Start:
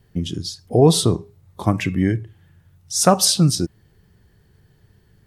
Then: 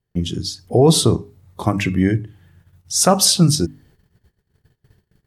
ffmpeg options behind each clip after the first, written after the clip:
ffmpeg -i in.wav -af "bandreject=frequency=50:width_type=h:width=6,bandreject=frequency=100:width_type=h:width=6,bandreject=frequency=150:width_type=h:width=6,bandreject=frequency=200:width_type=h:width=6,bandreject=frequency=250:width_type=h:width=6,bandreject=frequency=300:width_type=h:width=6,agate=range=-23dB:threshold=-53dB:ratio=16:detection=peak,alimiter=level_in=5dB:limit=-1dB:release=50:level=0:latency=1,volume=-2dB" out.wav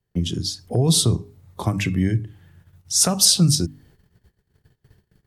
ffmpeg -i in.wav -filter_complex "[0:a]acrossover=split=180|3000[link_01][link_02][link_03];[link_02]acompressor=threshold=-27dB:ratio=3[link_04];[link_01][link_04][link_03]amix=inputs=3:normalize=0" out.wav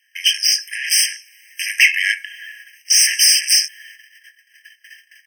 ffmpeg -i in.wav -filter_complex "[0:a]asplit=2[link_01][link_02];[link_02]adelay=21,volume=-11.5dB[link_03];[link_01][link_03]amix=inputs=2:normalize=0,asplit=2[link_04][link_05];[link_05]highpass=frequency=720:poles=1,volume=33dB,asoftclip=type=tanh:threshold=-3dB[link_06];[link_04][link_06]amix=inputs=2:normalize=0,lowpass=frequency=4200:poles=1,volume=-6dB,afftfilt=real='re*eq(mod(floor(b*sr/1024/1600),2),1)':imag='im*eq(mod(floor(b*sr/1024/1600),2),1)':win_size=1024:overlap=0.75,volume=3.5dB" out.wav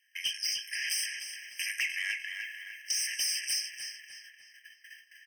ffmpeg -i in.wav -filter_complex "[0:a]acompressor=threshold=-20dB:ratio=5,asoftclip=type=tanh:threshold=-12.5dB,asplit=2[link_01][link_02];[link_02]adelay=301,lowpass=frequency=4800:poles=1,volume=-6dB,asplit=2[link_03][link_04];[link_04]adelay=301,lowpass=frequency=4800:poles=1,volume=0.5,asplit=2[link_05][link_06];[link_06]adelay=301,lowpass=frequency=4800:poles=1,volume=0.5,asplit=2[link_07][link_08];[link_08]adelay=301,lowpass=frequency=4800:poles=1,volume=0.5,asplit=2[link_09][link_10];[link_10]adelay=301,lowpass=frequency=4800:poles=1,volume=0.5,asplit=2[link_11][link_12];[link_12]adelay=301,lowpass=frequency=4800:poles=1,volume=0.5[link_13];[link_03][link_05][link_07][link_09][link_11][link_13]amix=inputs=6:normalize=0[link_14];[link_01][link_14]amix=inputs=2:normalize=0,volume=-9dB" out.wav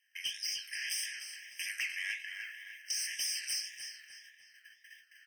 ffmpeg -i in.wav -af "flanger=delay=9.7:depth=9.3:regen=71:speed=1.8:shape=triangular" out.wav

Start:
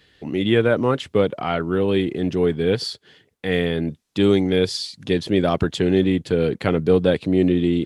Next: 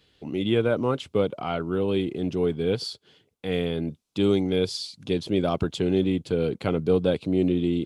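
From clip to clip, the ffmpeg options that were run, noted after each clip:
ffmpeg -i in.wav -af "equalizer=frequency=1800:width=4.8:gain=-11.5,volume=-5dB" out.wav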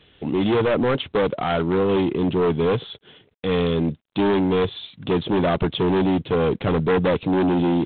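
ffmpeg -i in.wav -filter_complex "[0:a]asplit=2[link_01][link_02];[link_02]aeval=exprs='0.355*sin(PI/2*5.01*val(0)/0.355)':channel_layout=same,volume=-12dB[link_03];[link_01][link_03]amix=inputs=2:normalize=0" -ar 8000 -c:a adpcm_g726 -b:a 24k out.wav

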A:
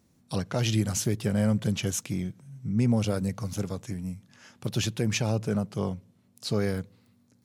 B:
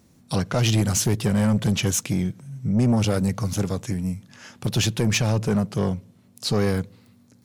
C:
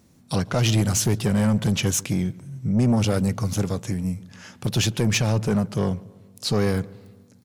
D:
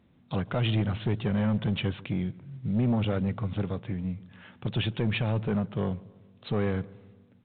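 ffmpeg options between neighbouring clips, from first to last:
ffmpeg -i in.wav -af "asoftclip=type=tanh:threshold=-22.5dB,volume=8.5dB" out.wav
ffmpeg -i in.wav -filter_complex "[0:a]asplit=2[link_01][link_02];[link_02]adelay=144,lowpass=frequency=1700:poles=1,volume=-21dB,asplit=2[link_03][link_04];[link_04]adelay=144,lowpass=frequency=1700:poles=1,volume=0.54,asplit=2[link_05][link_06];[link_06]adelay=144,lowpass=frequency=1700:poles=1,volume=0.54,asplit=2[link_07][link_08];[link_08]adelay=144,lowpass=frequency=1700:poles=1,volume=0.54[link_09];[link_01][link_03][link_05][link_07][link_09]amix=inputs=5:normalize=0" out.wav
ffmpeg -i in.wav -af "volume=-6dB" -ar 8000 -c:a pcm_mulaw out.wav

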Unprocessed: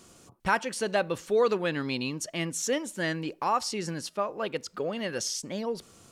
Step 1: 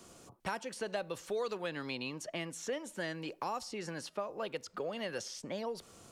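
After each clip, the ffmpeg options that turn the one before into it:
ffmpeg -i in.wav -filter_complex "[0:a]equalizer=frequency=660:width_type=o:width=1.5:gain=4,acrossover=split=110|530|3400[link_01][link_02][link_03][link_04];[link_01]acompressor=threshold=-59dB:ratio=4[link_05];[link_02]acompressor=threshold=-41dB:ratio=4[link_06];[link_03]acompressor=threshold=-37dB:ratio=4[link_07];[link_04]acompressor=threshold=-46dB:ratio=4[link_08];[link_05][link_06][link_07][link_08]amix=inputs=4:normalize=0,volume=-2.5dB" out.wav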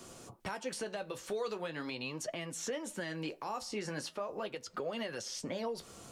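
ffmpeg -i in.wav -af "alimiter=level_in=9.5dB:limit=-24dB:level=0:latency=1:release=205,volume=-9.5dB,flanger=delay=7.7:depth=7.1:regen=-47:speed=0.41:shape=sinusoidal,volume=8.5dB" out.wav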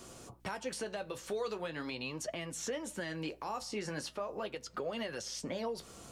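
ffmpeg -i in.wav -af "aeval=exprs='val(0)+0.000631*(sin(2*PI*60*n/s)+sin(2*PI*2*60*n/s)/2+sin(2*PI*3*60*n/s)/3+sin(2*PI*4*60*n/s)/4+sin(2*PI*5*60*n/s)/5)':channel_layout=same" out.wav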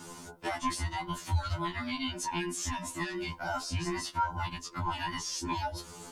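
ffmpeg -i in.wav -af "afftfilt=real='real(if(between(b,1,1008),(2*floor((b-1)/24)+1)*24-b,b),0)':imag='imag(if(between(b,1,1008),(2*floor((b-1)/24)+1)*24-b,b),0)*if(between(b,1,1008),-1,1)':win_size=2048:overlap=0.75,afftfilt=real='re*2*eq(mod(b,4),0)':imag='im*2*eq(mod(b,4),0)':win_size=2048:overlap=0.75,volume=7.5dB" out.wav

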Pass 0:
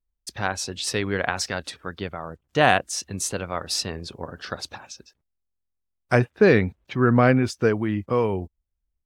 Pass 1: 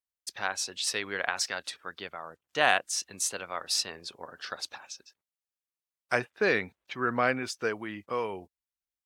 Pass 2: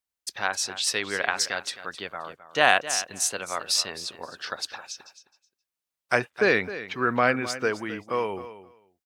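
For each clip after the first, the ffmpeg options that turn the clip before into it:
ffmpeg -i in.wav -af "highpass=frequency=1100:poles=1,volume=-2dB" out.wav
ffmpeg -i in.wav -af "aecho=1:1:263|526:0.2|0.0319,volume=4.5dB" out.wav

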